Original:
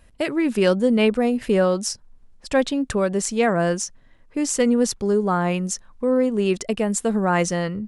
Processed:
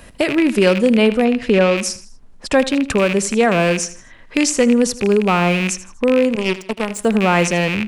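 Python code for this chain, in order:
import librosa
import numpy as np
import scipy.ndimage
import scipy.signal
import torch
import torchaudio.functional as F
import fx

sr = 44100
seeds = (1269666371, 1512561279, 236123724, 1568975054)

y = fx.rattle_buzz(x, sr, strikes_db=-36.0, level_db=-17.0)
y = fx.lowpass(y, sr, hz=fx.line((1.24, 4100.0), (1.75, 6600.0)), slope=12, at=(1.24, 1.75), fade=0.02)
y = fx.peak_eq(y, sr, hz=fx.line((3.81, 1400.0), (4.49, 4800.0)), db=9.5, octaves=2.3, at=(3.81, 4.49), fade=0.02)
y = fx.power_curve(y, sr, exponent=2.0, at=(6.35, 6.99))
y = fx.echo_feedback(y, sr, ms=80, feedback_pct=35, wet_db=-16.0)
y = fx.band_squash(y, sr, depth_pct=40)
y = y * librosa.db_to_amplitude(4.5)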